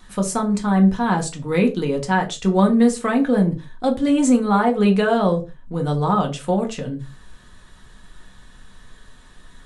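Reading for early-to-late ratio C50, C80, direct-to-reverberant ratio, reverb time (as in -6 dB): 13.5 dB, 20.5 dB, 2.5 dB, no single decay rate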